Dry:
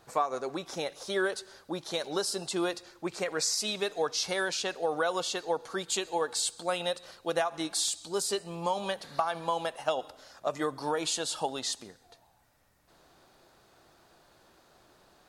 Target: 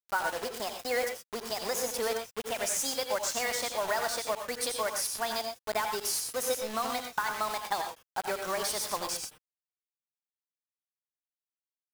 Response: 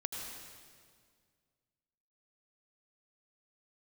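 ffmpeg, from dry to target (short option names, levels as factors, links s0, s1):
-filter_complex "[0:a]asetrate=56448,aresample=44100,acrusher=bits=5:mix=0:aa=0.000001[s0];[1:a]atrim=start_sample=2205,afade=t=out:st=0.18:d=0.01,atrim=end_sample=8379[s1];[s0][s1]afir=irnorm=-1:irlink=0"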